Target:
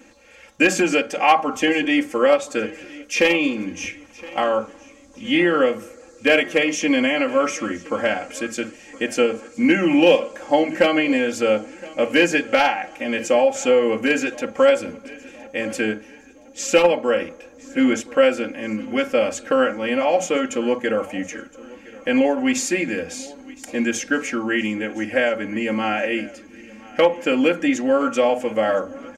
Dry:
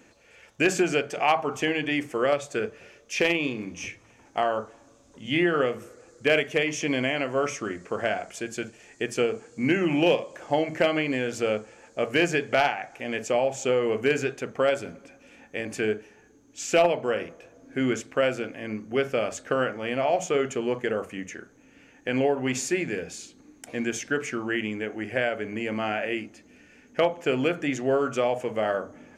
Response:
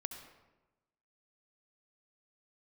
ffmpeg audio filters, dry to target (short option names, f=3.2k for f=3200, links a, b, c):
-af "aecho=1:1:3.7:0.97,aecho=1:1:1017|2034|3051:0.0891|0.0392|0.0173,volume=3.5dB"